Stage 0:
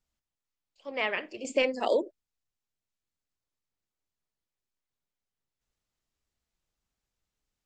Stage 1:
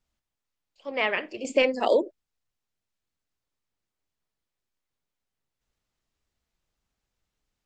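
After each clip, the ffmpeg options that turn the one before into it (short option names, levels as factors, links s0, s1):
-af "highshelf=f=7200:g=-7,volume=1.68"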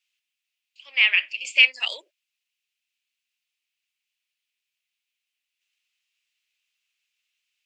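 -af "highpass=f=2600:t=q:w=4.1,volume=1.41"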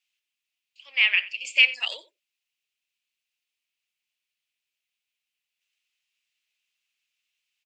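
-af "aecho=1:1:90:0.119,volume=0.794"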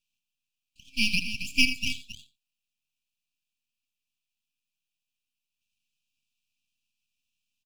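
-af "aeval=exprs='max(val(0),0)':c=same,aecho=1:1:78.72|271.1:0.251|0.282,afftfilt=real='re*(1-between(b*sr/4096,280,2300))':imag='im*(1-between(b*sr/4096,280,2300))':win_size=4096:overlap=0.75"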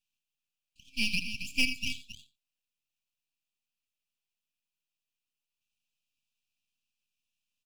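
-af "asoftclip=type=tanh:threshold=0.398,volume=0.631"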